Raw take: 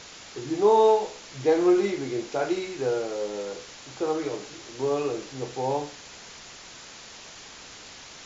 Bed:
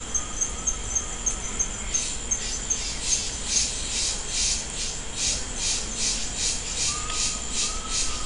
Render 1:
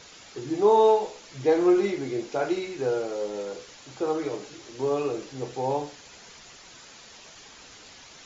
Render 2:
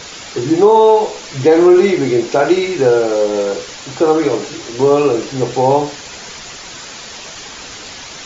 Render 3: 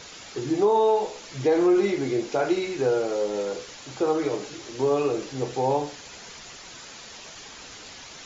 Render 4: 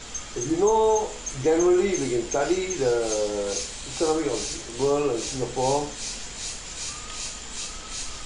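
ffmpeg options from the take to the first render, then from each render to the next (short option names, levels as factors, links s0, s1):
-af "afftdn=nr=6:nf=-45"
-filter_complex "[0:a]asplit=2[s0][s1];[s1]acompressor=threshold=0.0398:ratio=6,volume=0.75[s2];[s0][s2]amix=inputs=2:normalize=0,alimiter=level_in=3.98:limit=0.891:release=50:level=0:latency=1"
-af "volume=0.266"
-filter_complex "[1:a]volume=0.398[s0];[0:a][s0]amix=inputs=2:normalize=0"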